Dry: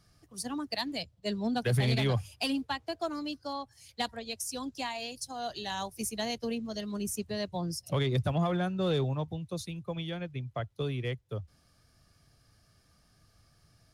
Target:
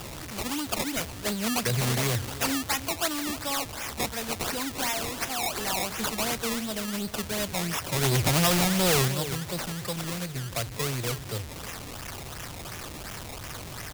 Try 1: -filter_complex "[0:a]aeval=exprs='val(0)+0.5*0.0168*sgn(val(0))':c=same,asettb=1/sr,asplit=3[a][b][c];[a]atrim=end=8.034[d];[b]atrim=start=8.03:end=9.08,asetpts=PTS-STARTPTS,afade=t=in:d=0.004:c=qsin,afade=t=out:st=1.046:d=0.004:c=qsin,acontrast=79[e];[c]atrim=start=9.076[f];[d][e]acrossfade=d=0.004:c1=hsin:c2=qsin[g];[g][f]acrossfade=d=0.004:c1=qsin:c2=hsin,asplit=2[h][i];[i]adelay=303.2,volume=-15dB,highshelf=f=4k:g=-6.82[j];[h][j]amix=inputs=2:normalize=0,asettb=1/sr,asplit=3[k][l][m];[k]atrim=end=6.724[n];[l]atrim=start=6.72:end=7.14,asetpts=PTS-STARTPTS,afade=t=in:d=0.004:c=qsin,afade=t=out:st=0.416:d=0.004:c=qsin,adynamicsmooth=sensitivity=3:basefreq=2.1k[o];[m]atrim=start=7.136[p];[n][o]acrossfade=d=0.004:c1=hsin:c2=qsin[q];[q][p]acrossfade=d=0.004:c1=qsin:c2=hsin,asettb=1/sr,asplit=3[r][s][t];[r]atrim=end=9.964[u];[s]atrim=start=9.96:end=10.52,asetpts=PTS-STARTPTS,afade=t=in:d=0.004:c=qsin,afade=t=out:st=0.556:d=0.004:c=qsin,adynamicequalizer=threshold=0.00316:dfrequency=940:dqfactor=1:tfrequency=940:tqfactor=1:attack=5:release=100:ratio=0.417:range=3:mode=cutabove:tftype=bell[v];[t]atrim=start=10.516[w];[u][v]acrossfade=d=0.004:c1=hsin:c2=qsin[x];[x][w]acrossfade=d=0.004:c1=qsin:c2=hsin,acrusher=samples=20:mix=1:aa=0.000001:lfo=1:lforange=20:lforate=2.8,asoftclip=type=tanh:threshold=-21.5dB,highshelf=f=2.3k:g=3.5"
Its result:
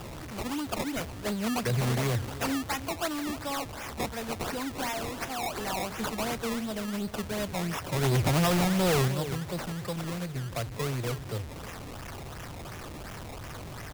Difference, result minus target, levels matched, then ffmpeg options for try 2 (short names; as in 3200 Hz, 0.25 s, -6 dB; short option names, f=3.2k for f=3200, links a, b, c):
4000 Hz band -3.5 dB
-filter_complex "[0:a]aeval=exprs='val(0)+0.5*0.0168*sgn(val(0))':c=same,asettb=1/sr,asplit=3[a][b][c];[a]atrim=end=8.034[d];[b]atrim=start=8.03:end=9.08,asetpts=PTS-STARTPTS,afade=t=in:d=0.004:c=qsin,afade=t=out:st=1.046:d=0.004:c=qsin,acontrast=79[e];[c]atrim=start=9.076[f];[d][e]acrossfade=d=0.004:c1=hsin:c2=qsin[g];[g][f]acrossfade=d=0.004:c1=qsin:c2=hsin,asplit=2[h][i];[i]adelay=303.2,volume=-15dB,highshelf=f=4k:g=-6.82[j];[h][j]amix=inputs=2:normalize=0,asettb=1/sr,asplit=3[k][l][m];[k]atrim=end=6.724[n];[l]atrim=start=6.72:end=7.14,asetpts=PTS-STARTPTS,afade=t=in:d=0.004:c=qsin,afade=t=out:st=0.416:d=0.004:c=qsin,adynamicsmooth=sensitivity=3:basefreq=2.1k[o];[m]atrim=start=7.136[p];[n][o]acrossfade=d=0.004:c1=hsin:c2=qsin[q];[q][p]acrossfade=d=0.004:c1=qsin:c2=hsin,asettb=1/sr,asplit=3[r][s][t];[r]atrim=end=9.964[u];[s]atrim=start=9.96:end=10.52,asetpts=PTS-STARTPTS,afade=t=in:d=0.004:c=qsin,afade=t=out:st=0.556:d=0.004:c=qsin,adynamicequalizer=threshold=0.00316:dfrequency=940:dqfactor=1:tfrequency=940:tqfactor=1:attack=5:release=100:ratio=0.417:range=3:mode=cutabove:tftype=bell[v];[t]atrim=start=10.516[w];[u][v]acrossfade=d=0.004:c1=hsin:c2=qsin[x];[x][w]acrossfade=d=0.004:c1=qsin:c2=hsin,acrusher=samples=20:mix=1:aa=0.000001:lfo=1:lforange=20:lforate=2.8,asoftclip=type=tanh:threshold=-21.5dB,highshelf=f=2.3k:g=12.5"